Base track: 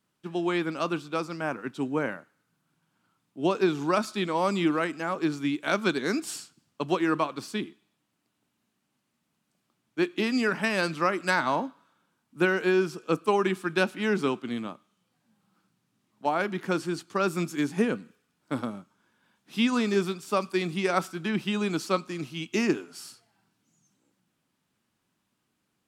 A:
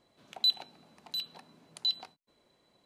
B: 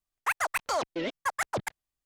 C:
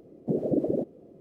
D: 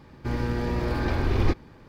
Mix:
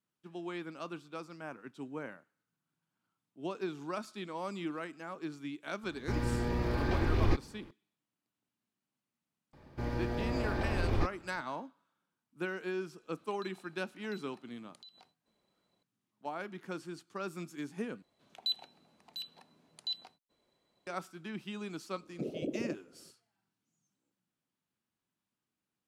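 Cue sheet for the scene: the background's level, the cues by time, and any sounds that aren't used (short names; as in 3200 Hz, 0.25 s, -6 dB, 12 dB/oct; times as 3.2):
base track -13.5 dB
5.83 add D -5.5 dB
9.53 add D -8.5 dB + bell 640 Hz +6.5 dB 0.59 oct
12.98 add A -9.5 dB + compressor, threshold -44 dBFS
18.02 replace with A -7 dB
21.91 add C -11.5 dB
not used: B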